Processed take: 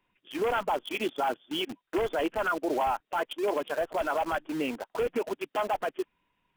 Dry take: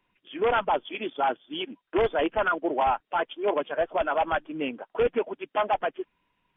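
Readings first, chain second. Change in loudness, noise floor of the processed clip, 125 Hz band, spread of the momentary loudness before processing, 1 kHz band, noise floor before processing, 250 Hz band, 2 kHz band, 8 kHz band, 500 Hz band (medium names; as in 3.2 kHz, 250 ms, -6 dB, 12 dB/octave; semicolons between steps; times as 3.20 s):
-3.0 dB, -79 dBFS, -2.5 dB, 8 LU, -4.0 dB, -77 dBFS, -0.5 dB, -3.0 dB, no reading, -3.5 dB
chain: in parallel at -4.5 dB: word length cut 6-bit, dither none; on the sum: peak limiter -18.5 dBFS, peak gain reduction 9 dB; trim -2 dB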